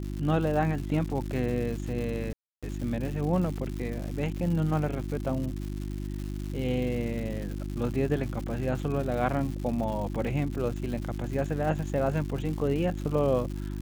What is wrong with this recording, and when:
surface crackle 230 per second −35 dBFS
mains hum 50 Hz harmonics 7 −34 dBFS
0:02.33–0:02.63: drop-out 296 ms

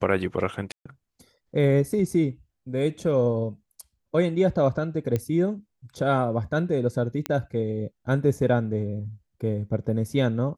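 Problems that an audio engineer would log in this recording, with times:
0:00.72–0:00.85: drop-out 135 ms
0:05.16: click −14 dBFS
0:07.26: click −11 dBFS

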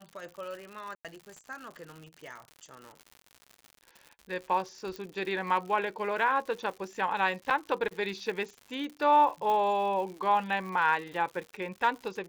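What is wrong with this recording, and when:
surface crackle 140 per second −39 dBFS
0:00.95–0:01.05: drop-out 97 ms
0:04.96: click −25 dBFS
0:07.50–0:07.51: drop-out 6.4 ms
0:09.50: click −20 dBFS

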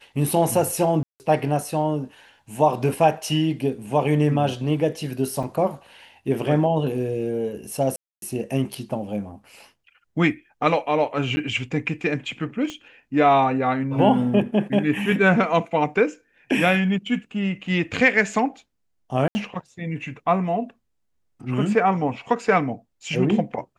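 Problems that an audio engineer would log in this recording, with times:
0:01.03–0:01.20: drop-out 169 ms
0:05.43–0:05.44: drop-out 5.2 ms
0:07.96–0:08.22: drop-out 262 ms
0:11.36–0:11.37: drop-out 10 ms
0:12.70: click −18 dBFS
0:19.28–0:19.35: drop-out 70 ms

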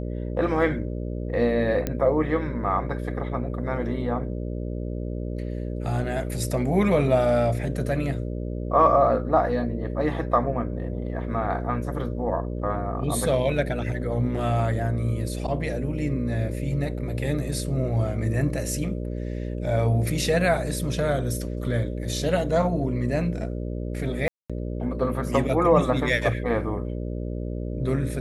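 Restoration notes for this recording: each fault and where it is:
mains buzz 60 Hz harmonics 10 −30 dBFS
0:01.87: click −12 dBFS
0:24.28–0:24.50: drop-out 216 ms

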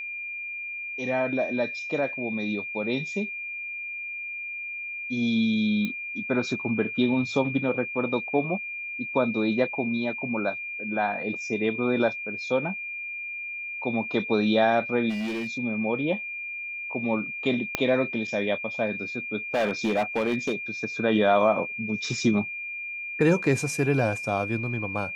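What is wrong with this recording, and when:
whistle 2,400 Hz −32 dBFS
0:05.85: click −17 dBFS
0:15.09–0:15.47: clipping −27 dBFS
0:17.75: click −8 dBFS
0:19.54–0:20.55: clipping −20 dBFS

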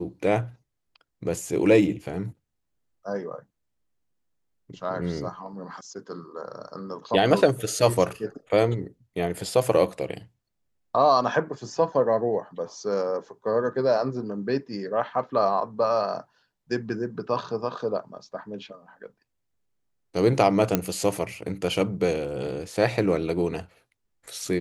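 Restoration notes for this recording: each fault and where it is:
0:20.75: click −6 dBFS

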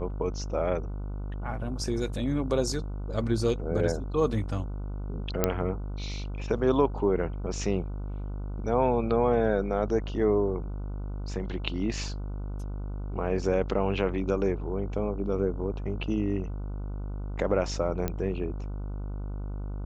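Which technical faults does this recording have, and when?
mains buzz 50 Hz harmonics 30 −34 dBFS
0:05.44: click −8 dBFS
0:18.08: click −16 dBFS

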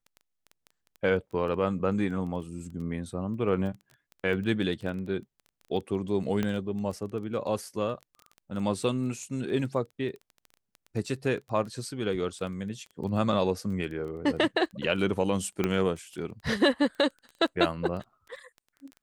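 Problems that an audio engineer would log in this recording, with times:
surface crackle 11 per second −36 dBFS
0:06.43: click −16 dBFS
0:15.64: click −13 dBFS

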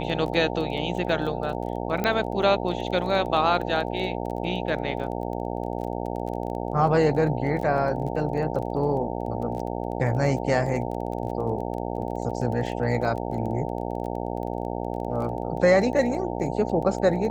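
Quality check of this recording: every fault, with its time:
mains buzz 60 Hz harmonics 15 −30 dBFS
surface crackle 19 per second −33 dBFS
0:02.04: click −12 dBFS

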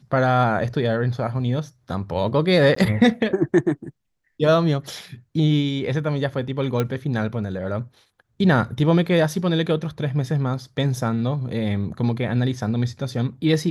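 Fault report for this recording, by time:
0:02.75–0:02.76: drop-out 14 ms
0:06.80: click −10 dBFS

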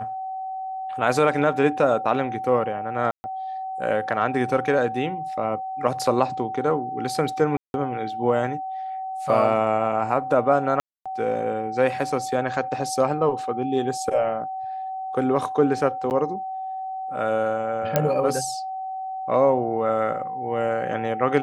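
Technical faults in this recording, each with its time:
whistle 760 Hz −28 dBFS
0:03.11–0:03.24: drop-out 130 ms
0:07.57–0:07.74: drop-out 171 ms
0:10.80–0:11.06: drop-out 256 ms
0:16.10–0:16.11: drop-out 9.5 ms
0:17.96: click −5 dBFS

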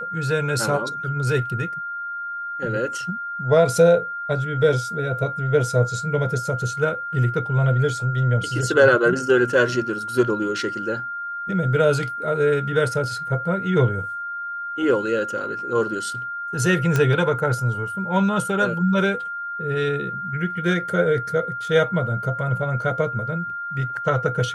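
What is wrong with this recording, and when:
whistle 1,400 Hz −27 dBFS
0:16.96: click −8 dBFS

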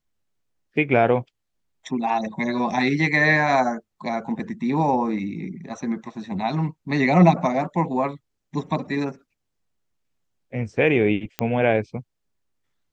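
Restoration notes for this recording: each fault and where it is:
0:11.39: click −9 dBFS

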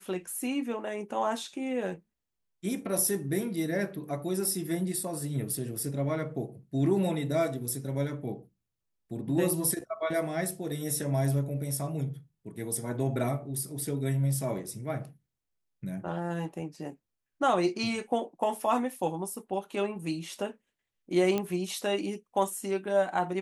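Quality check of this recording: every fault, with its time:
0:21.38: click −16 dBFS

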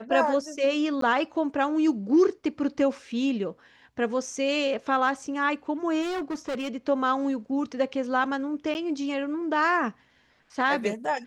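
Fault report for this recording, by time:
0:01.01–0:01.02: drop-out 13 ms
0:06.01–0:06.69: clipping −27 dBFS
0:08.74–0:08.75: drop-out 9.4 ms

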